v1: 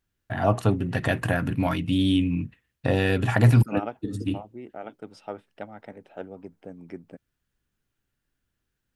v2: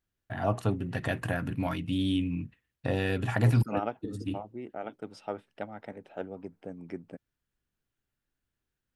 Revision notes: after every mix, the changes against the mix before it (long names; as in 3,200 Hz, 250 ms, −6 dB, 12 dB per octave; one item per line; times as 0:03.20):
first voice −6.5 dB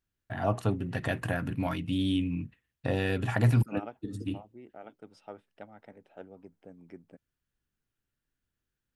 second voice −9.0 dB